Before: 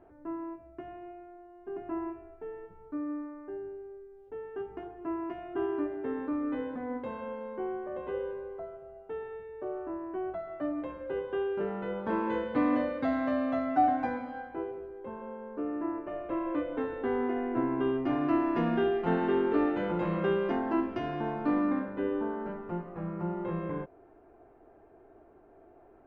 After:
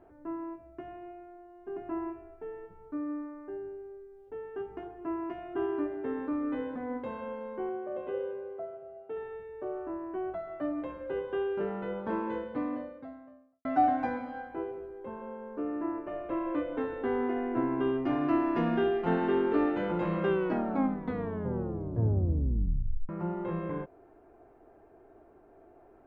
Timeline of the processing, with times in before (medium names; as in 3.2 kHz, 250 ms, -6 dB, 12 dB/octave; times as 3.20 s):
7.69–9.17 s: cabinet simulation 120–3600 Hz, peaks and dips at 170 Hz -4 dB, 630 Hz +4 dB, 970 Hz -7 dB, 1.8 kHz -6 dB
11.56–13.65 s: studio fade out
20.27 s: tape stop 2.82 s